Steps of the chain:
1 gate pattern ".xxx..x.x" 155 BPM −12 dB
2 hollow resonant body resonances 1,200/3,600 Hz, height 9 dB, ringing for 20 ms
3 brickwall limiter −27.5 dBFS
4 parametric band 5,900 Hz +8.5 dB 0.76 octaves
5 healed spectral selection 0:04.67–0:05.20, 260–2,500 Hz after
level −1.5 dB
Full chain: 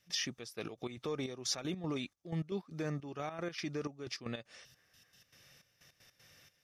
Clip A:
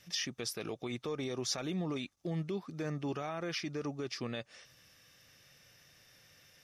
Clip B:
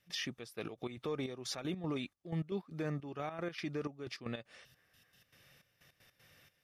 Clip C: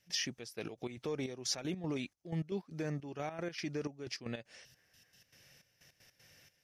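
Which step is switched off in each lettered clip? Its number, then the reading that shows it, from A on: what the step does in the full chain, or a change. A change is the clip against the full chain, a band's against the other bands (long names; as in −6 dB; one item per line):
1, change in crest factor −2.0 dB
4, 8 kHz band −7.5 dB
2, 1 kHz band −1.5 dB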